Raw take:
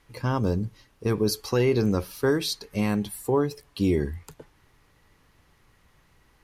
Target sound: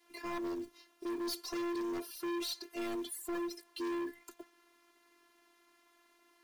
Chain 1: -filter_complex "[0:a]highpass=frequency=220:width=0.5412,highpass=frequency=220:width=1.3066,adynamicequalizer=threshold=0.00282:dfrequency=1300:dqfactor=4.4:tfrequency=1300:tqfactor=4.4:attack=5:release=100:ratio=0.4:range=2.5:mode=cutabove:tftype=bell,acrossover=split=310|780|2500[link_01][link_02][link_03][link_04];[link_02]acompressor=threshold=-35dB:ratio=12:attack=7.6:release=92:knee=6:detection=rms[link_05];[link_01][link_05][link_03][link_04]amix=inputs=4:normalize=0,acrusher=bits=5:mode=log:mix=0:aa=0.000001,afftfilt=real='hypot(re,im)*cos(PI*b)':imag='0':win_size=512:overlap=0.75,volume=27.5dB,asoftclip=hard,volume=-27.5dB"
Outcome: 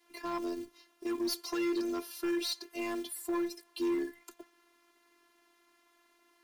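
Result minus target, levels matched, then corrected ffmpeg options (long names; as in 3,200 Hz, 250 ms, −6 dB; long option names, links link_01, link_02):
downward compressor: peak gain reduction +7 dB; gain into a clipping stage and back: distortion −7 dB
-filter_complex "[0:a]highpass=frequency=220:width=0.5412,highpass=frequency=220:width=1.3066,adynamicequalizer=threshold=0.00282:dfrequency=1300:dqfactor=4.4:tfrequency=1300:tqfactor=4.4:attack=5:release=100:ratio=0.4:range=2.5:mode=cutabove:tftype=bell,acrossover=split=310|780|2500[link_01][link_02][link_03][link_04];[link_02]acompressor=threshold=-27.5dB:ratio=12:attack=7.6:release=92:knee=6:detection=rms[link_05];[link_01][link_05][link_03][link_04]amix=inputs=4:normalize=0,acrusher=bits=5:mode=log:mix=0:aa=0.000001,afftfilt=real='hypot(re,im)*cos(PI*b)':imag='0':win_size=512:overlap=0.75,volume=35dB,asoftclip=hard,volume=-35dB"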